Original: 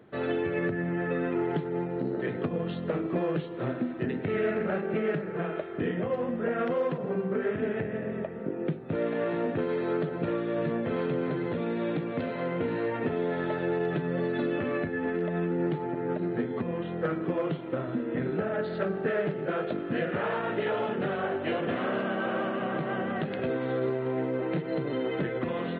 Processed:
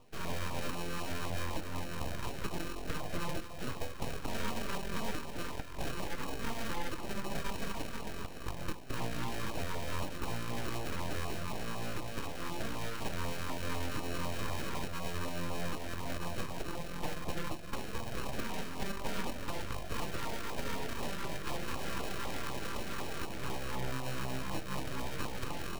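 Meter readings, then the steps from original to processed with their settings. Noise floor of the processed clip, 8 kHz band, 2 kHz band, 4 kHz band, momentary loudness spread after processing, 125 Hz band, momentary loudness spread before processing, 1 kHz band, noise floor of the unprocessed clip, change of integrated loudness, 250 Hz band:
−40 dBFS, can't be measured, −6.0 dB, +4.0 dB, 3 LU, −6.5 dB, 3 LU, −5.0 dB, −37 dBFS, −9.5 dB, −12.5 dB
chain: samples sorted by size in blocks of 32 samples
full-wave rectification
auto-filter notch saw down 4 Hz 600–1,700 Hz
level −3.5 dB

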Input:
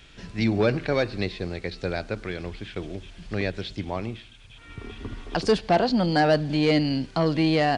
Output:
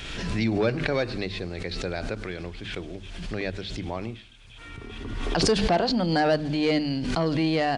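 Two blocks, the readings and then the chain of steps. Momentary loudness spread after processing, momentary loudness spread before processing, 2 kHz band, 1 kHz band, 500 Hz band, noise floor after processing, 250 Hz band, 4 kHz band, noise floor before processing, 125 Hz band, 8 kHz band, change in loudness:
16 LU, 17 LU, −1.0 dB, −2.0 dB, −2.0 dB, −45 dBFS, −1.5 dB, +1.0 dB, −49 dBFS, −2.0 dB, +8.0 dB, −1.5 dB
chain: mains-hum notches 50/100/150/200/250 Hz
background raised ahead of every attack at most 35 dB per second
level −2.5 dB

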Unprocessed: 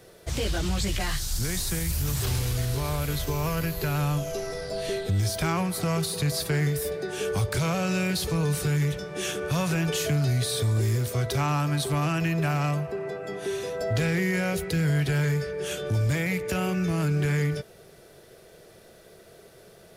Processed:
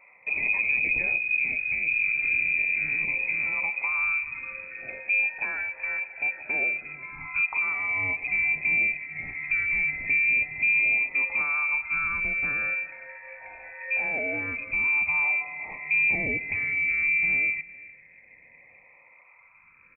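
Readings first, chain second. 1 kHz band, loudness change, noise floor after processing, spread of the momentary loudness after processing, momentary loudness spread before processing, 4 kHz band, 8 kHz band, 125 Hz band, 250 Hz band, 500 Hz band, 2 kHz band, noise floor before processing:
−6.5 dB, +3.0 dB, −56 dBFS, 12 LU, 6 LU, below −40 dB, below −40 dB, −25.0 dB, −17.5 dB, −14.5 dB, +12.0 dB, −52 dBFS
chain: dynamic equaliser 740 Hz, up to −5 dB, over −43 dBFS, Q 0.95
all-pass phaser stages 12, 0.13 Hz, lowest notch 400–1,500 Hz
on a send: single-tap delay 392 ms −22.5 dB
on the sum: voice inversion scrambler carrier 2,500 Hz

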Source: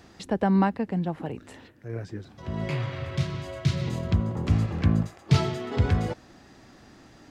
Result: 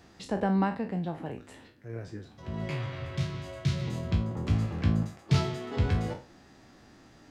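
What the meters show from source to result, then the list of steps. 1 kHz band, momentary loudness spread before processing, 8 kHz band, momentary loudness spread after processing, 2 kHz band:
−4.0 dB, 14 LU, −3.0 dB, 14 LU, −3.5 dB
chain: peak hold with a decay on every bin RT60 0.34 s
level −5 dB

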